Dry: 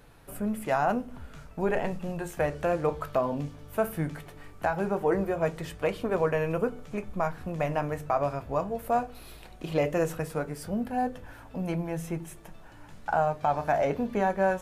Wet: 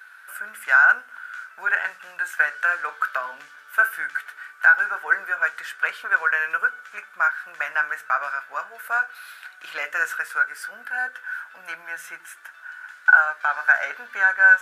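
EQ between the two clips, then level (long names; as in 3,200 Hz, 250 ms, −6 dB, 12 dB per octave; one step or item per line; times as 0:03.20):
high-pass with resonance 1,500 Hz, resonance Q 14
+3.0 dB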